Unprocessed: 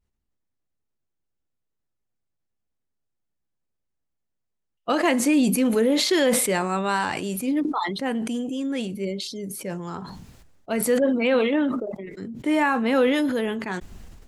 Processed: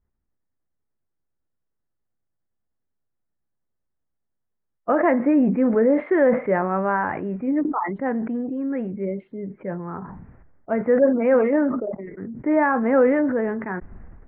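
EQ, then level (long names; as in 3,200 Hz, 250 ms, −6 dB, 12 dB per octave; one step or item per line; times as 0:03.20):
Butterworth low-pass 2,000 Hz 48 dB per octave
high-frequency loss of the air 110 metres
dynamic equaliser 600 Hz, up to +5 dB, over −35 dBFS, Q 3.1
+1.5 dB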